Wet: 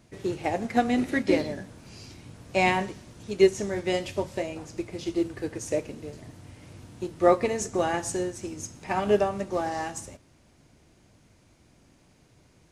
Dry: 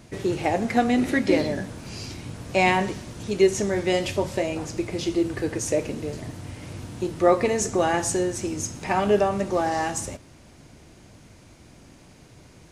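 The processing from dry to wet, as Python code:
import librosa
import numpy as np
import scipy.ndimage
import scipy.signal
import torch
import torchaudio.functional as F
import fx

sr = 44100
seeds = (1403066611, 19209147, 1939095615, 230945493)

y = fx.upward_expand(x, sr, threshold_db=-32.0, expansion=1.5)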